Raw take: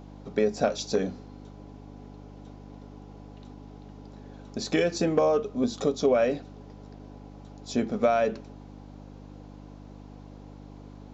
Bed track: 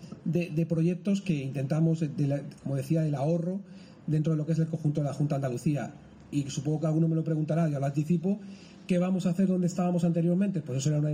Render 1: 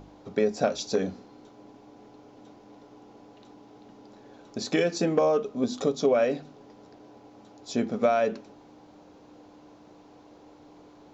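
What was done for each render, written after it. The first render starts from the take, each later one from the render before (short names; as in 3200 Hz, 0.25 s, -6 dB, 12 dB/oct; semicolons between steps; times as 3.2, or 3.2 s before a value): de-hum 50 Hz, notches 5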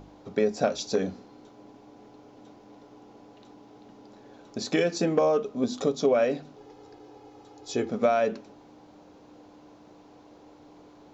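6.57–7.9 comb 2.4 ms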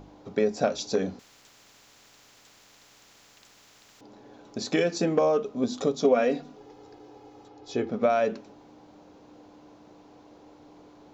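1.19–4.01 spectral compressor 10:1; 6.04–6.57 comb 4.2 ms; 7.48–8.1 air absorption 110 m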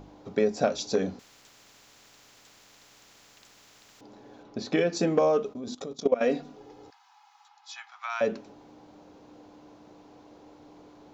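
4.43–4.93 air absorption 140 m; 5.53–6.21 level quantiser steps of 18 dB; 6.9–8.21 steep high-pass 840 Hz 72 dB/oct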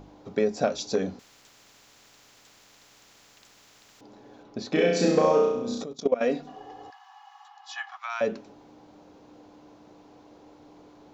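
4.69–5.83 flutter echo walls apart 5.7 m, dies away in 0.86 s; 6.47–7.97 small resonant body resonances 760/1100/1700/2900 Hz, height 16 dB, ringing for 35 ms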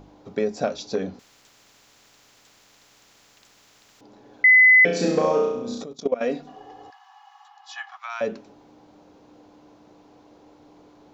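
0.74–1.14 LPF 5400 Hz; 4.44–4.85 bleep 2020 Hz -9.5 dBFS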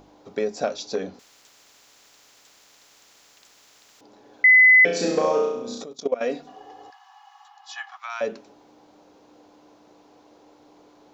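tone controls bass -8 dB, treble +3 dB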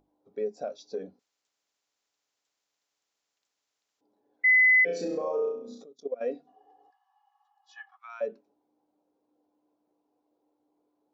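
limiter -16 dBFS, peak gain reduction 6.5 dB; spectral expander 1.5:1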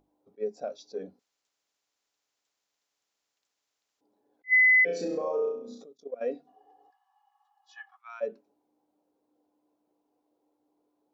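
attack slew limiter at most 490 dB/s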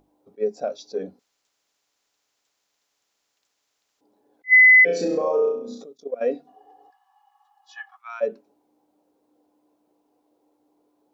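gain +8 dB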